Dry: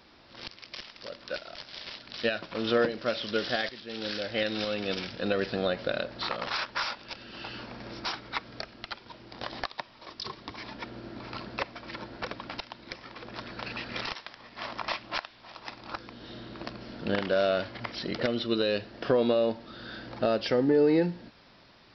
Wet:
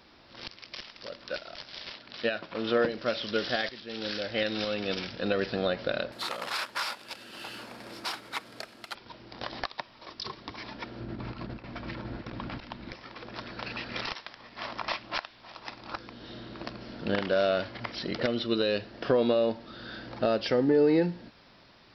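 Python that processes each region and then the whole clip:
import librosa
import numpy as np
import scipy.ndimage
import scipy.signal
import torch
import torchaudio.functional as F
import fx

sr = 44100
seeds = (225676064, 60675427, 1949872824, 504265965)

y = fx.chain(x, sr, fx.lowpass(hz=3600.0, slope=6),
    fx.low_shelf(hz=100.0, db=-9.0), at=(1.92, 2.85))
y = fx.chain(y, sr, fx.cvsd(bps=64000),
    fx.highpass(hz=260.0, slope=6),
    fx.transformer_sat(knee_hz=2500.0), at=(6.12, 8.95))
y = fx.chain(y, sr, fx.bass_treble(bass_db=10, treble_db=-6),
    fx.over_compress(threshold_db=-38.0, ratio=-0.5),
    fx.echo_single(ms=312, db=-15.5), at=(11.0, 12.93))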